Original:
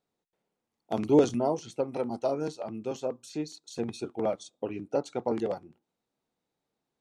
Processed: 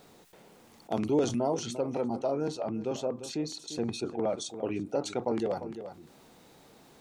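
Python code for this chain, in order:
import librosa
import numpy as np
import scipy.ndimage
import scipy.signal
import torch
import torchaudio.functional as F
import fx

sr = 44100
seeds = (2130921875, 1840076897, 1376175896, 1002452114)

y = fx.high_shelf(x, sr, hz=3400.0, db=-8.0, at=(1.92, 4.38))
y = y + 10.0 ** (-21.0 / 20.0) * np.pad(y, (int(347 * sr / 1000.0), 0))[:len(y)]
y = fx.env_flatten(y, sr, amount_pct=50)
y = y * librosa.db_to_amplitude(-6.5)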